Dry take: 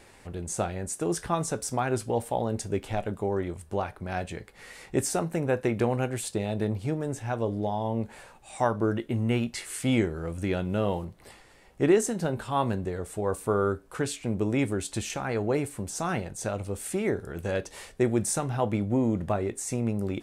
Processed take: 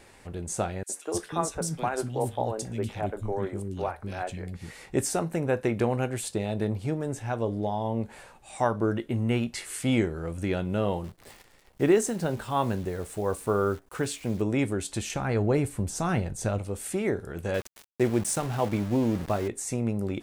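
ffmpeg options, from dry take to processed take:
ffmpeg -i in.wav -filter_complex "[0:a]asettb=1/sr,asplit=3[link_01][link_02][link_03];[link_01]atrim=end=0.834[link_04];[link_02]atrim=start=0.83:end=4.71,asetpts=PTS-STARTPTS,afade=type=in:duration=0.004:curve=qsin,afade=type=out:start_time=3.876:duration=0.004:curve=qsin,acrossover=split=300|2200[link_05][link_06][link_07];[link_06]adelay=60[link_08];[link_05]adelay=310[link_09];[link_09][link_08][link_07]amix=inputs=3:normalize=0,atrim=end_sample=171108[link_10];[link_03]atrim=start=4.706[link_11];[link_04][link_10]acrossfade=duration=0.004:curve1=hsin:curve2=qsin[link_12];[link_12][link_11]acrossfade=duration=0.004:curve1=qsin:curve2=hsin,asettb=1/sr,asplit=3[link_13][link_14][link_15];[link_13]atrim=end=11.044[link_16];[link_14]atrim=start=11.04:end=14.42,asetpts=PTS-STARTPTS,afade=type=in:duration=0.004:curve=qsin,afade=type=out:start_time=3.376:duration=0.004:curve=qsin,acrusher=bits=9:dc=4:mix=0:aa=0.000001[link_17];[link_15]atrim=start=14.416[link_18];[link_16][link_17]acrossfade=duration=0.004:curve1=hsin:curve2=qsin[link_19];[link_19][link_18]acrossfade=duration=0.004:curve1=qsin:curve2=hsin,asettb=1/sr,asplit=3[link_20][link_21][link_22];[link_20]atrim=end=15.154[link_23];[link_21]atrim=start=15.15:end=16.59,asetpts=PTS-STARTPTS,afade=type=in:duration=0.004:curve=qsin,afade=type=out:start_time=1.436:duration=0.004:curve=qsin,lowshelf=frequency=160:gain=10.5[link_24];[link_22]atrim=start=16.586[link_25];[link_23][link_24]acrossfade=duration=0.004:curve1=hsin:curve2=qsin[link_26];[link_26][link_25]acrossfade=duration=0.004:curve1=qsin:curve2=hsin,asettb=1/sr,asplit=3[link_27][link_28][link_29];[link_27]atrim=end=17.544[link_30];[link_28]atrim=start=17.54:end=19.48,asetpts=PTS-STARTPTS,afade=type=in:duration=0.004:curve=qsin,afade=type=out:start_time=1.936:duration=0.004:curve=qsin,aeval=exprs='val(0)*gte(abs(val(0)),0.0168)':channel_layout=same[link_31];[link_29]atrim=start=19.476[link_32];[link_30][link_31]acrossfade=duration=0.004:curve1=hsin:curve2=qsin[link_33];[link_33][link_32]acrossfade=duration=0.004:curve1=qsin:curve2=hsin" out.wav

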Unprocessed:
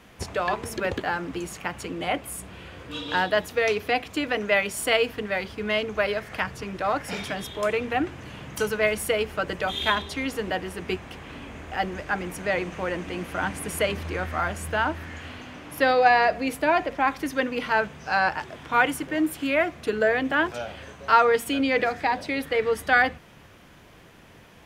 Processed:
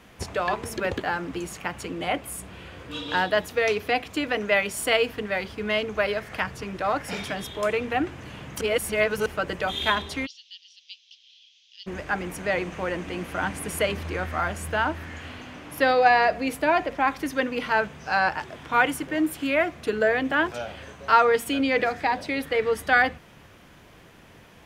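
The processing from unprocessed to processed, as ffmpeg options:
ffmpeg -i in.wav -filter_complex "[0:a]asplit=3[link_01][link_02][link_03];[link_01]afade=type=out:start_time=10.25:duration=0.02[link_04];[link_02]asuperpass=centerf=4300:order=8:qfactor=1.5,afade=type=in:start_time=10.25:duration=0.02,afade=type=out:start_time=11.86:duration=0.02[link_05];[link_03]afade=type=in:start_time=11.86:duration=0.02[link_06];[link_04][link_05][link_06]amix=inputs=3:normalize=0,asplit=3[link_07][link_08][link_09];[link_07]atrim=end=8.612[link_10];[link_08]atrim=start=8.608:end=9.262,asetpts=PTS-STARTPTS,areverse[link_11];[link_09]atrim=start=9.258[link_12];[link_10][link_11]acrossfade=duration=0.004:curve1=hsin:curve2=hsin[link_13];[link_13][link_12]acrossfade=duration=0.004:curve1=hsin:curve2=hsin" out.wav

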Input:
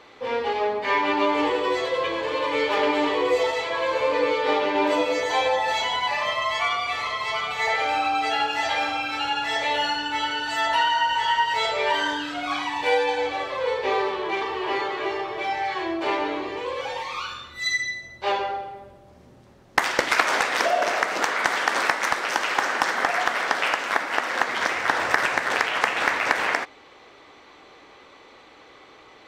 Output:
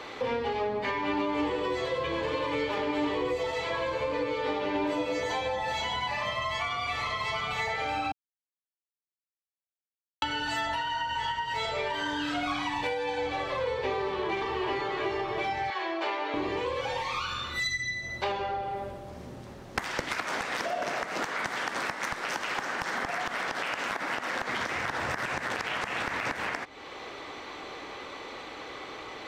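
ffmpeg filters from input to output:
ffmpeg -i in.wav -filter_complex "[0:a]asettb=1/sr,asplit=3[link_01][link_02][link_03];[link_01]atrim=end=15.704[link_04];[link_02]atrim=start=15.7:end=16.34,asetpts=PTS-STARTPTS,afade=type=in:duration=0.004:curve=qsin,afade=type=out:start_time=0.636:duration=0.004:curve=qsin,highpass=560,lowpass=6100[link_05];[link_03]atrim=start=16.336[link_06];[link_04][link_05]acrossfade=duration=0.004:curve1=hsin:curve2=qsin[link_07];[link_07][link_06]acrossfade=duration=0.004:curve1=qsin:curve2=hsin,asettb=1/sr,asplit=3[link_08][link_09][link_10];[link_08]atrim=end=22.744[link_11];[link_09]atrim=start=22.74:end=26.25,asetpts=PTS-STARTPTS,afade=type=in:duration=0.004:curve=qsin,afade=type=out:start_time=3.506:duration=0.004:curve=qsin,acompressor=threshold=-22dB:ratio=6:attack=3.2:release=140:knee=1:detection=peak[link_12];[link_10]atrim=start=26.246[link_13];[link_11][link_12]acrossfade=duration=0.004:curve1=hsin:curve2=qsin[link_14];[link_14][link_13]acrossfade=duration=0.004:curve1=qsin:curve2=hsin,asplit=3[link_15][link_16][link_17];[link_15]atrim=end=8.12,asetpts=PTS-STARTPTS,afade=type=out:start_time=8.116:duration=0.004:curve=hsin[link_18];[link_16]atrim=start=8.12:end=10.22,asetpts=PTS-STARTPTS,volume=0[link_19];[link_17]atrim=start=10.22,asetpts=PTS-STARTPTS,afade=type=in:duration=0.004:curve=hsin[link_20];[link_18][link_19][link_20]concat=n=3:v=0:a=1,alimiter=limit=-14.5dB:level=0:latency=1:release=465,acrossover=split=210[link_21][link_22];[link_22]acompressor=threshold=-37dB:ratio=10[link_23];[link_21][link_23]amix=inputs=2:normalize=0,volume=8dB" out.wav

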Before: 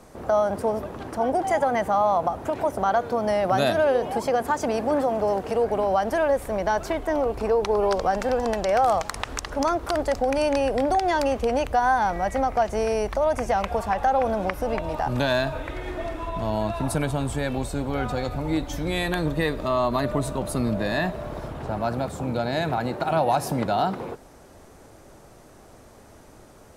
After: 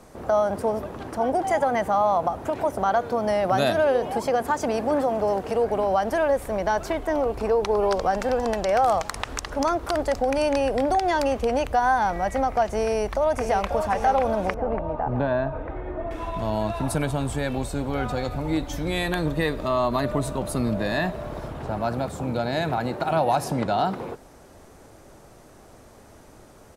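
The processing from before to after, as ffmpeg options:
ffmpeg -i in.wav -filter_complex "[0:a]asplit=2[link_01][link_02];[link_02]afade=type=in:start_time=12.86:duration=0.01,afade=type=out:start_time=13.72:duration=0.01,aecho=0:1:540|1080|1620|2160|2700|3240|3780|4320|4860:0.421697|0.274103|0.178167|0.115808|0.0752755|0.048929|0.0318039|0.0206725|0.0134371[link_03];[link_01][link_03]amix=inputs=2:normalize=0,asettb=1/sr,asplit=3[link_04][link_05][link_06];[link_04]atrim=end=14.544[link_07];[link_05]atrim=start=14.54:end=16.11,asetpts=PTS-STARTPTS,afade=type=in:duration=0.004:curve=qsin,afade=type=out:start_time=1.566:duration=0.004:curve=qsin,lowpass=1200[link_08];[link_06]atrim=start=16.106[link_09];[link_07][link_08]acrossfade=duration=0.004:curve1=hsin:curve2=qsin[link_10];[link_10][link_09]acrossfade=duration=0.004:curve1=qsin:curve2=hsin,asettb=1/sr,asplit=3[link_11][link_12][link_13];[link_11]atrim=end=23.444[link_14];[link_12]atrim=start=23.44:end=23.85,asetpts=PTS-STARTPTS,afade=type=in:duration=0.004:curve=qsin,afade=type=out:start_time=0.406:duration=0.004:curve=qsin,lowpass=9800[link_15];[link_13]atrim=start=23.846[link_16];[link_14][link_15]acrossfade=duration=0.004:curve1=hsin:curve2=qsin[link_17];[link_17][link_16]acrossfade=duration=0.004:curve1=qsin:curve2=hsin" out.wav

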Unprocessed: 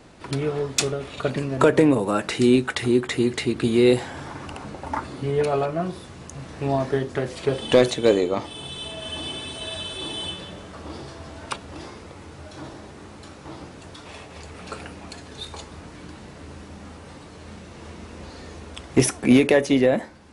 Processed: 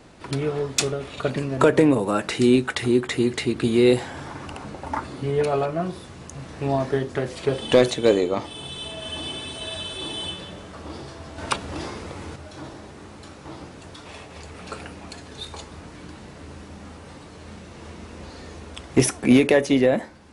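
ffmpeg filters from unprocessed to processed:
ffmpeg -i in.wav -filter_complex "[0:a]asettb=1/sr,asplit=3[link_01][link_02][link_03];[link_01]atrim=end=11.384[link_04];[link_02]atrim=start=11.38:end=12.36,asetpts=PTS-STARTPTS,afade=type=in:duration=0.004:curve=qsin,afade=type=out:start_time=0.976:duration=0.004:curve=qsin,acontrast=49[link_05];[link_03]atrim=start=12.356[link_06];[link_04][link_05]acrossfade=duration=0.004:curve1=hsin:curve2=qsin[link_07];[link_07][link_06]acrossfade=duration=0.004:curve1=qsin:curve2=hsin" out.wav

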